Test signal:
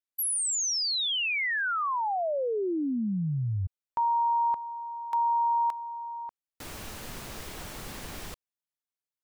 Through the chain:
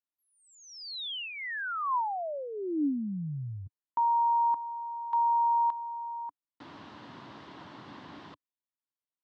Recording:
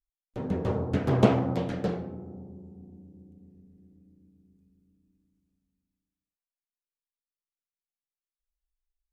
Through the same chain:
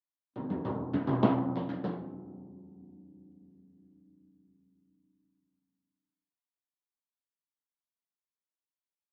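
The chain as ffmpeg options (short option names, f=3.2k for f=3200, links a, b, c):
-af "highpass=f=110:w=0.5412,highpass=f=110:w=1.3066,equalizer=f=290:t=q:w=4:g=9,equalizer=f=470:t=q:w=4:g=-5,equalizer=f=1k:t=q:w=4:g=8,equalizer=f=2.4k:t=q:w=4:g=-7,lowpass=f=3.9k:w=0.5412,lowpass=f=3.9k:w=1.3066,volume=-6dB"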